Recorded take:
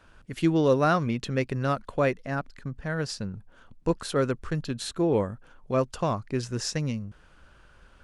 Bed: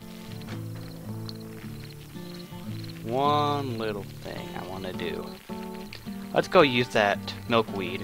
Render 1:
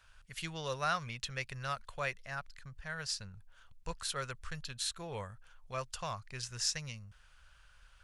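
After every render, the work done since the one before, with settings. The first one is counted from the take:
guitar amp tone stack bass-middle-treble 10-0-10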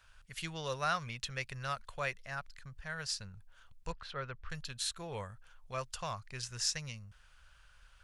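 0:03.92–0:04.50: high-frequency loss of the air 300 metres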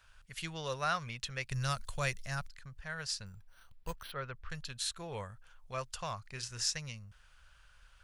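0:01.51–0:02.48: bass and treble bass +10 dB, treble +13 dB
0:03.26–0:04.12: bad sample-rate conversion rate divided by 6×, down none, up hold
0:06.22–0:06.65: double-tracking delay 36 ms −10 dB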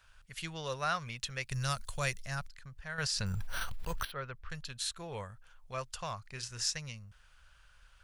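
0:01.06–0:02.20: high-shelf EQ 6,100 Hz +5 dB
0:02.98–0:04.05: envelope flattener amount 100%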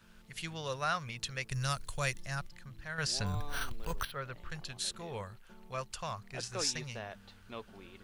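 mix in bed −22 dB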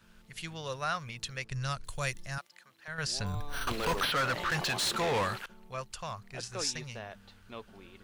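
0:01.44–0:01.84: high-frequency loss of the air 63 metres
0:02.38–0:02.88: high-pass filter 530 Hz
0:03.67–0:05.46: mid-hump overdrive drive 33 dB, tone 4,900 Hz, clips at −21.5 dBFS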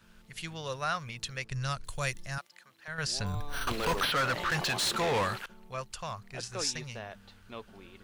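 level +1 dB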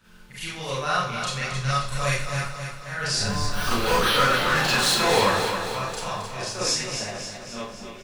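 on a send: repeating echo 268 ms, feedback 57%, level −7.5 dB
on the sum: four-comb reverb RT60 0.46 s, combs from 30 ms, DRR −7.5 dB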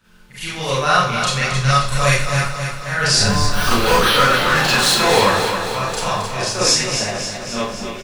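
automatic gain control gain up to 12 dB

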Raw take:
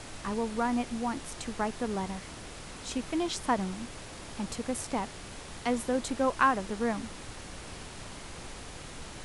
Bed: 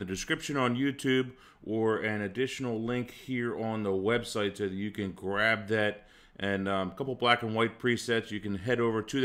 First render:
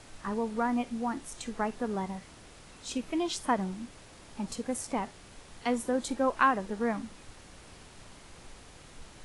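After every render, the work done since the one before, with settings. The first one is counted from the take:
noise reduction from a noise print 8 dB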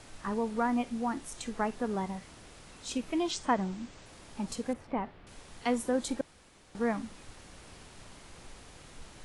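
0:03.31–0:04.06: Butterworth low-pass 8,200 Hz 48 dB per octave
0:04.73–0:05.27: high-frequency loss of the air 390 metres
0:06.21–0:06.75: fill with room tone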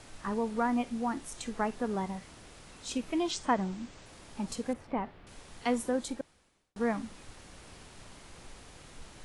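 0:05.81–0:06.76: fade out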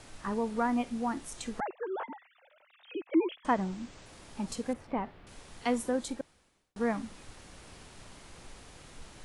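0:01.60–0:03.45: three sine waves on the formant tracks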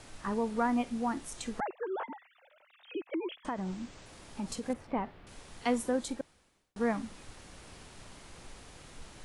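0:02.97–0:04.70: downward compressor, threshold −31 dBFS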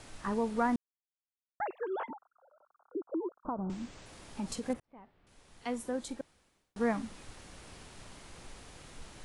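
0:00.76–0:01.60: silence
0:02.10–0:03.70: Butterworth low-pass 1,400 Hz 96 dB per octave
0:04.80–0:06.78: fade in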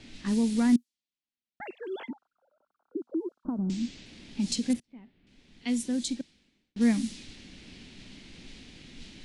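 low-pass that shuts in the quiet parts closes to 2,100 Hz, open at −29 dBFS
drawn EQ curve 120 Hz 0 dB, 240 Hz +11 dB, 500 Hz −5 dB, 1,200 Hz −11 dB, 2,100 Hz +5 dB, 4,100 Hz +14 dB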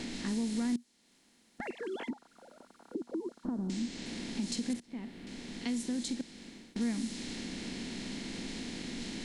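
compressor on every frequency bin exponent 0.6
downward compressor 2 to 1, threshold −39 dBFS, peak gain reduction 12.5 dB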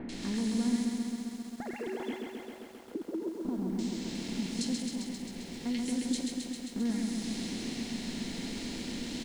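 multiband delay without the direct sound lows, highs 90 ms, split 1,700 Hz
feedback echo at a low word length 133 ms, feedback 80%, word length 10 bits, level −4 dB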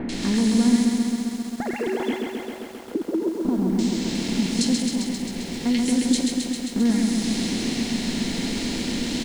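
level +11.5 dB

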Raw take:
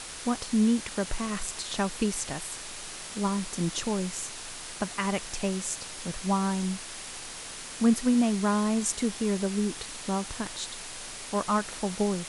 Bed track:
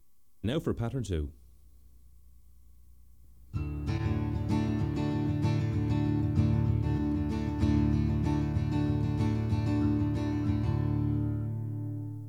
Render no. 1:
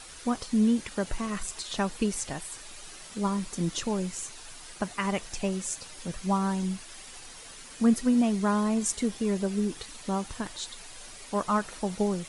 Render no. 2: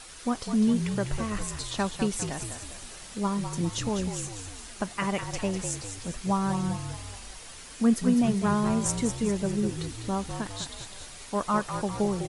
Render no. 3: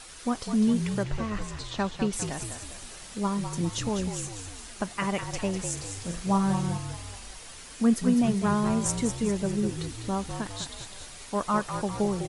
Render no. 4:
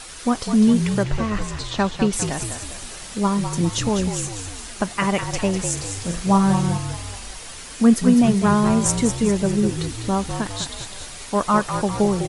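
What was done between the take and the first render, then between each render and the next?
broadband denoise 9 dB, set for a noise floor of −41 dBFS
echo with shifted repeats 201 ms, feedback 52%, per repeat −46 Hz, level −8 dB
0:01.03–0:02.13: high-frequency loss of the air 89 metres; 0:05.73–0:06.78: flutter between parallel walls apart 7 metres, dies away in 0.34 s
level +8 dB

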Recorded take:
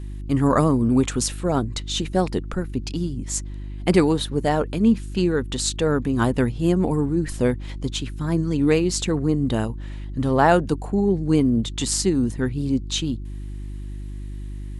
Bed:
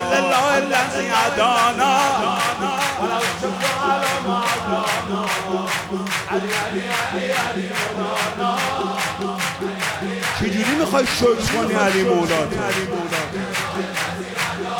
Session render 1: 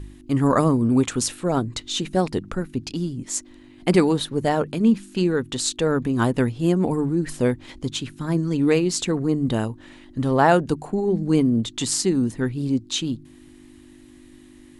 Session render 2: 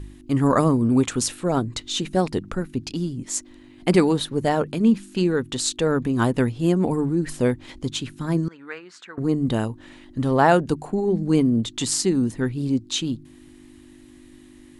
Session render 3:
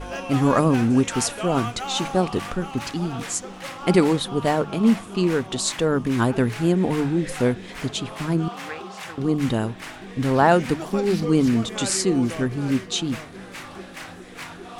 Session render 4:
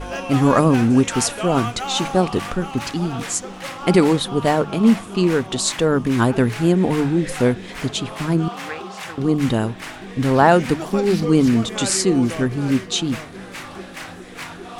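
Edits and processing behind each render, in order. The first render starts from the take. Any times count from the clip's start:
hum removal 50 Hz, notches 4
0:08.48–0:09.18: resonant band-pass 1,500 Hz, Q 3.3
mix in bed −14.5 dB
level +3.5 dB; brickwall limiter −2 dBFS, peak gain reduction 1.5 dB

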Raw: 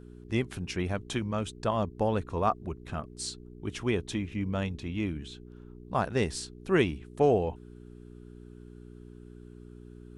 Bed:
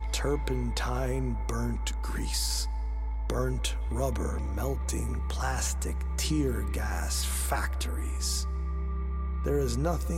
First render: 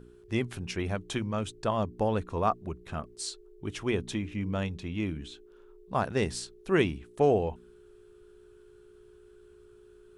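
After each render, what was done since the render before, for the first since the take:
hum removal 60 Hz, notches 5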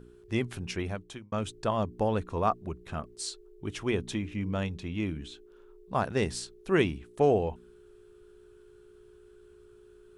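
0:00.75–0:01.32: fade out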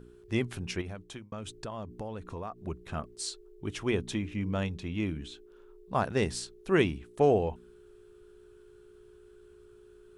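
0:00.81–0:02.60: downward compressor, threshold −35 dBFS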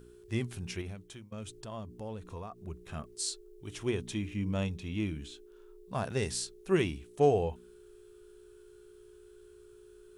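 high-shelf EQ 3,900 Hz +12 dB
harmonic and percussive parts rebalanced percussive −11 dB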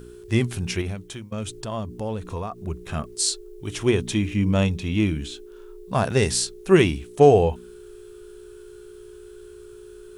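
level +12 dB
brickwall limiter −3 dBFS, peak gain reduction 1.5 dB

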